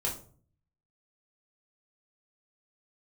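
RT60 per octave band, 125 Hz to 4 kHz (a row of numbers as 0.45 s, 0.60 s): 0.85 s, 0.65 s, 0.50 s, 0.40 s, 0.30 s, 0.30 s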